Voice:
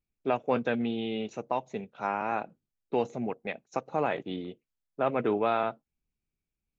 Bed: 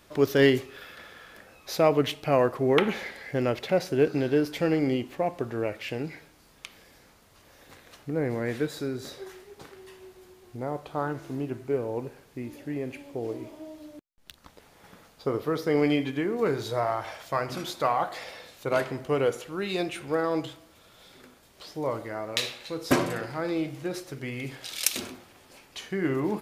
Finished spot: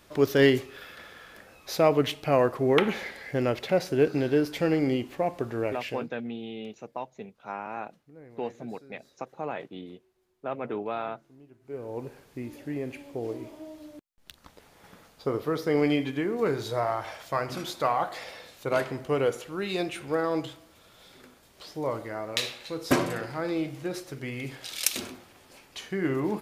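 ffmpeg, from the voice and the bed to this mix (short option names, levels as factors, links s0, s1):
-filter_complex "[0:a]adelay=5450,volume=0.531[s0];[1:a]volume=11.2,afade=t=out:st=5.82:d=0.28:silence=0.0841395,afade=t=in:st=11.6:d=0.54:silence=0.0891251[s1];[s0][s1]amix=inputs=2:normalize=0"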